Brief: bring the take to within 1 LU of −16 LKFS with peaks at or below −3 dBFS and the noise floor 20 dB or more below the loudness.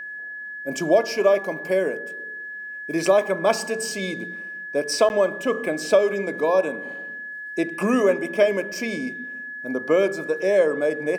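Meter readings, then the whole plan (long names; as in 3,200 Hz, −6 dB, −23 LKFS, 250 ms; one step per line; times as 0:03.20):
number of dropouts 1; longest dropout 9.9 ms; interfering tone 1,700 Hz; level of the tone −32 dBFS; integrated loudness −23.0 LKFS; sample peak −6.5 dBFS; target loudness −16.0 LKFS
→ repair the gap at 0:05.09, 9.9 ms
notch filter 1,700 Hz, Q 30
level +7 dB
brickwall limiter −3 dBFS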